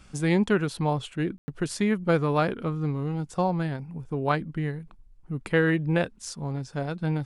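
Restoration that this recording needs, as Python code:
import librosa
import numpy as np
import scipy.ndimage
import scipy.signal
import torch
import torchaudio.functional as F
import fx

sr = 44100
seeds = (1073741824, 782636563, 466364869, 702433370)

y = fx.fix_ambience(x, sr, seeds[0], print_start_s=4.8, print_end_s=5.3, start_s=1.38, end_s=1.48)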